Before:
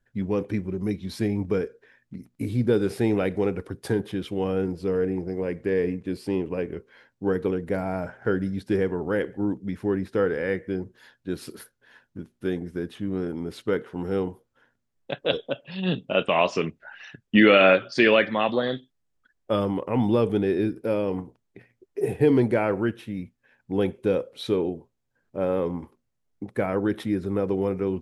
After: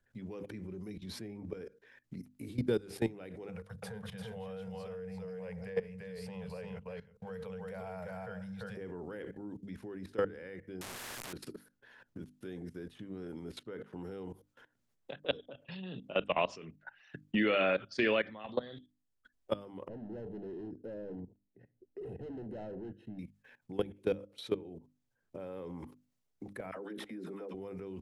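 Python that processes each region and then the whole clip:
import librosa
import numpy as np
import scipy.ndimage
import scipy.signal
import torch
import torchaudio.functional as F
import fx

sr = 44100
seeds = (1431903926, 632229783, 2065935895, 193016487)

y = fx.chain(x, sr, fx.cheby1_bandstop(low_hz=210.0, high_hz=450.0, order=4),
    fx.echo_single(ms=343, db=-5.5), at=(3.48, 8.77))
y = fx.chain(y, sr, fx.delta_mod(bps=64000, step_db=-28.5),
    fx.spectral_comp(ratio=4.0), at=(10.81, 11.33))
y = fx.chain(y, sr, fx.overload_stage(gain_db=28.0),
    fx.moving_average(points=38), at=(19.88, 23.19))
y = fx.chain(y, sr, fx.highpass(hz=200.0, slope=24),
    fx.dispersion(late='lows', ms=55.0, hz=730.0), at=(26.71, 27.54))
y = fx.level_steps(y, sr, step_db=21)
y = fx.hum_notches(y, sr, base_hz=50, count=6)
y = fx.band_squash(y, sr, depth_pct=40)
y = y * librosa.db_to_amplitude(-2.5)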